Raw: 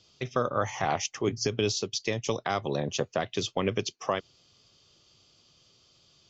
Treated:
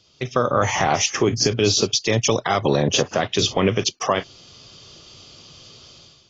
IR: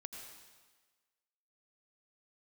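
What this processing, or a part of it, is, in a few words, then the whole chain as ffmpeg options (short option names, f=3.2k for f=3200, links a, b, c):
low-bitrate web radio: -af "dynaudnorm=f=140:g=5:m=13dB,alimiter=limit=-11dB:level=0:latency=1:release=98,volume=3.5dB" -ar 16000 -c:a aac -b:a 24k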